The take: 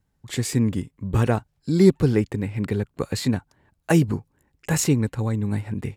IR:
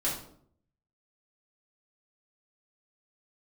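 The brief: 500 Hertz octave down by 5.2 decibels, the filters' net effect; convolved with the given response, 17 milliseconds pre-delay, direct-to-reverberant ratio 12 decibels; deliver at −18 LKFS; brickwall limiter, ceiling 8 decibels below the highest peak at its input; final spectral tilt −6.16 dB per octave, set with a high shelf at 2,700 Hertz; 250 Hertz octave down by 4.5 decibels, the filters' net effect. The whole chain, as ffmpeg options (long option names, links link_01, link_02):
-filter_complex "[0:a]equalizer=frequency=250:width_type=o:gain=-5.5,equalizer=frequency=500:width_type=o:gain=-4.5,highshelf=frequency=2700:gain=-6,alimiter=limit=-16dB:level=0:latency=1,asplit=2[link_01][link_02];[1:a]atrim=start_sample=2205,adelay=17[link_03];[link_02][link_03]afir=irnorm=-1:irlink=0,volume=-18.5dB[link_04];[link_01][link_04]amix=inputs=2:normalize=0,volume=10dB"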